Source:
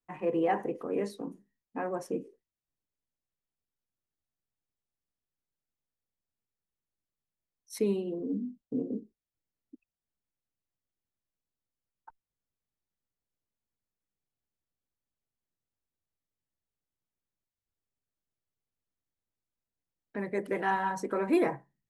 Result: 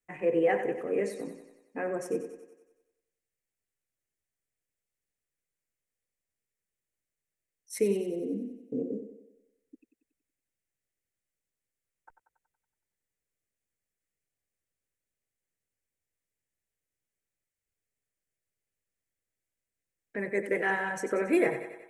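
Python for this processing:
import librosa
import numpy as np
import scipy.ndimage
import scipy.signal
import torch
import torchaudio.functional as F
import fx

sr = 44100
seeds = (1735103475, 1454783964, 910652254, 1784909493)

y = fx.graphic_eq_10(x, sr, hz=(250, 500, 1000, 2000, 4000, 8000), db=(-3, 6, -10, 10, -7, 7))
y = fx.echo_thinned(y, sr, ms=93, feedback_pct=57, hz=180.0, wet_db=-10)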